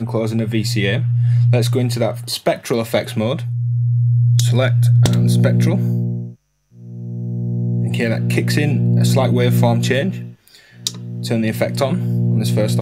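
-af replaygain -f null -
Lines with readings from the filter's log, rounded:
track_gain = +0.3 dB
track_peak = 0.463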